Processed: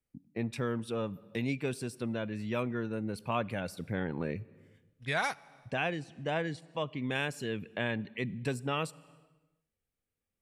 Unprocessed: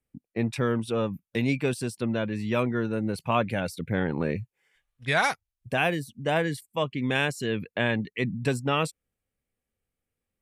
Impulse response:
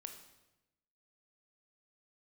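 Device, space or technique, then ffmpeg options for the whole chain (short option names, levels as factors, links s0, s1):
compressed reverb return: -filter_complex "[0:a]asplit=2[s0][s1];[1:a]atrim=start_sample=2205[s2];[s1][s2]afir=irnorm=-1:irlink=0,acompressor=threshold=0.00891:ratio=6,volume=1.12[s3];[s0][s3]amix=inputs=2:normalize=0,asettb=1/sr,asplit=3[s4][s5][s6];[s4]atrim=end=5.704[s7];[s5]atrim=start=5.7:end=7.1,asetpts=PTS-STARTPTS,afade=t=in:d=0.004:c=qsin,afade=t=out:st=1.396:d=0.004:c=qsin,lowpass=f=7300:w=0.5412,lowpass=f=7300:w=1.3066[s8];[s6]atrim=start=7.096[s9];[s7][s8]acrossfade=d=0.004:c1=hsin:c2=qsin[s10];[s10][s9]acrossfade=d=0.004:c1=qsin:c2=hsin,volume=0.376"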